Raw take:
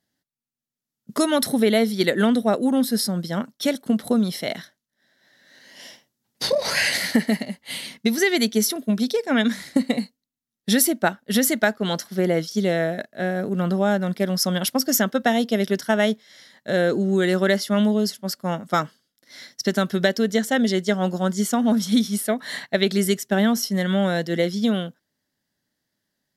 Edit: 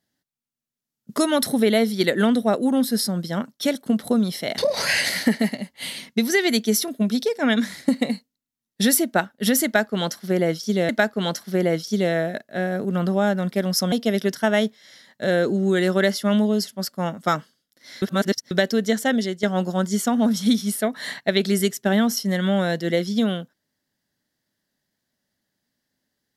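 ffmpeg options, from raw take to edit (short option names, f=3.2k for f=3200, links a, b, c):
-filter_complex "[0:a]asplit=7[a][b][c][d][e][f][g];[a]atrim=end=4.582[h];[b]atrim=start=6.458:end=12.772[i];[c]atrim=start=11.528:end=14.562[j];[d]atrim=start=15.378:end=19.482[k];[e]atrim=start=19.478:end=19.972,asetpts=PTS-STARTPTS,areverse[l];[f]atrim=start=19.968:end=20.89,asetpts=PTS-STARTPTS,afade=t=out:st=0.572:d=0.35:silence=0.316228[m];[g]atrim=start=20.89,asetpts=PTS-STARTPTS,afade=t=in:d=0.004:c=hsin:silence=0.316228[n];[h][i]acrossfade=d=0.004:c1=hsin:c2=hsin[o];[o][j]acrossfade=d=0.004:c1=hsin:c2=hsin[p];[p][k]acrossfade=d=0.004:c1=hsin:c2=hsin[q];[q][l]acrossfade=d=0.004:c1=hsin:c2=hsin[r];[m][n]concat=n=2:v=0:a=1[s];[r][s]acrossfade=d=0.004:c1=hsin:c2=hsin"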